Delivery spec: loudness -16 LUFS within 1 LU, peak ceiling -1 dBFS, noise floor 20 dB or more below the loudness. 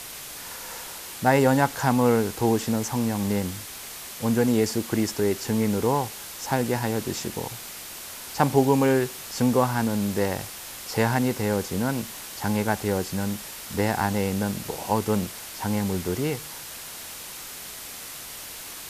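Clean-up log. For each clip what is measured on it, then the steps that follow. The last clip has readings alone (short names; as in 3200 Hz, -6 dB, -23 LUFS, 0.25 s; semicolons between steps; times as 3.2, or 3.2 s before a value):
noise floor -39 dBFS; noise floor target -46 dBFS; loudness -26.0 LUFS; peak -5.0 dBFS; loudness target -16.0 LUFS
-> noise print and reduce 7 dB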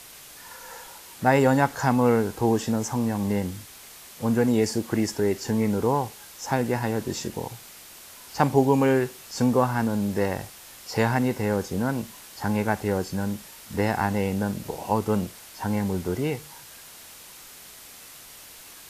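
noise floor -46 dBFS; loudness -25.0 LUFS; peak -5.0 dBFS; loudness target -16.0 LUFS
-> gain +9 dB; limiter -1 dBFS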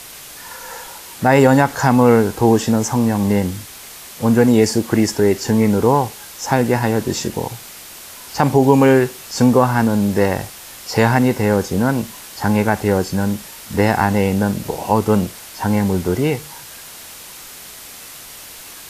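loudness -16.5 LUFS; peak -1.0 dBFS; noise floor -37 dBFS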